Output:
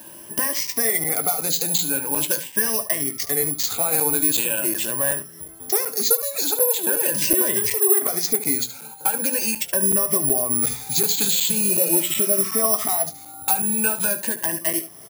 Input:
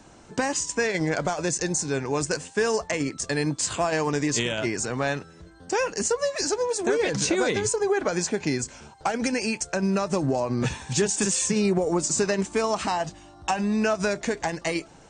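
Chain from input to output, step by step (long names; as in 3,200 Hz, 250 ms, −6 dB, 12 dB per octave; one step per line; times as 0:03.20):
rippled gain that drifts along the octave scale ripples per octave 1.3, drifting +0.42 Hz, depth 15 dB
healed spectral selection 0:11.66–0:12.57, 900–7,000 Hz both
bad sample-rate conversion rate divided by 4×, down none, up zero stuff
in parallel at +2.5 dB: downward compressor, threshold −28 dBFS, peak gain reduction 21.5 dB
on the sum: high-pass filter 120 Hz 12 dB per octave
mains-hum notches 60/120/180 Hz
on a send: ambience of single reflections 18 ms −11 dB, 73 ms −13 dB
on the sum: regular buffer underruns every 0.37 s, samples 256, zero, from 0:00.67
level −6.5 dB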